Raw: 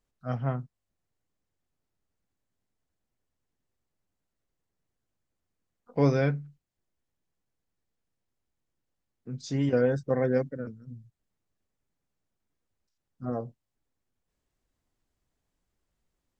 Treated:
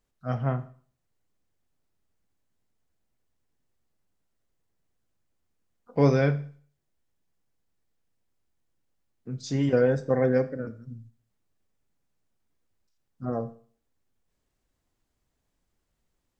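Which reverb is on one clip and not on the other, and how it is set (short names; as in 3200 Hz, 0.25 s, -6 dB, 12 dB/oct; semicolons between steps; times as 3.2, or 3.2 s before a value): Schroeder reverb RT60 0.46 s, combs from 27 ms, DRR 12 dB; gain +2.5 dB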